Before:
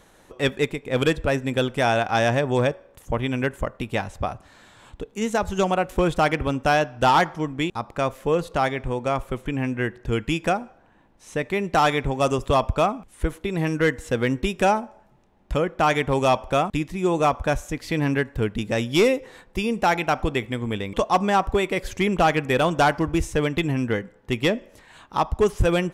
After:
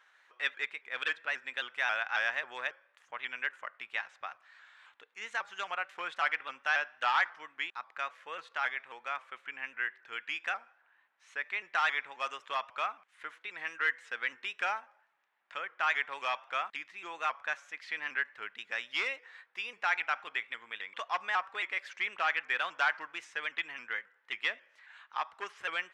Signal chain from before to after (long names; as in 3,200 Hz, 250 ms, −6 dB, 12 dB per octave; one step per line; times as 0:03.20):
four-pole ladder band-pass 2,000 Hz, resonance 35%
pitch modulation by a square or saw wave saw up 3.7 Hz, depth 100 cents
level +5 dB